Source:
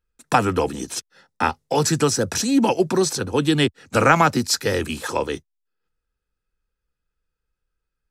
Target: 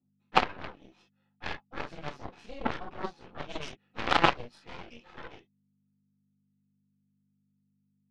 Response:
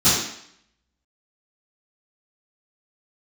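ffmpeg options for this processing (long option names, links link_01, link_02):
-filter_complex "[0:a]aeval=exprs='val(0)+0.0112*(sin(2*PI*50*n/s)+sin(2*PI*2*50*n/s)/2+sin(2*PI*3*50*n/s)/3+sin(2*PI*4*50*n/s)/4+sin(2*PI*5*50*n/s)/5)':channel_layout=same,highpass=350,equalizer=frequency=430:width_type=q:width=4:gain=-5,equalizer=frequency=810:width_type=q:width=4:gain=4,equalizer=frequency=1500:width_type=q:width=4:gain=-9,equalizer=frequency=2600:width_type=q:width=4:gain=3,lowpass=frequency=2900:width=0.5412,lowpass=frequency=2900:width=1.3066[link_01];[1:a]atrim=start_sample=2205,afade=type=out:start_time=0.14:duration=0.01,atrim=end_sample=6615[link_02];[link_01][link_02]afir=irnorm=-1:irlink=0,aeval=exprs='5.62*(cos(1*acos(clip(val(0)/5.62,-1,1)))-cos(1*PI/2))+2*(cos(3*acos(clip(val(0)/5.62,-1,1)))-cos(3*PI/2))+0.141*(cos(8*acos(clip(val(0)/5.62,-1,1)))-cos(8*PI/2))':channel_layout=same,volume=-18dB"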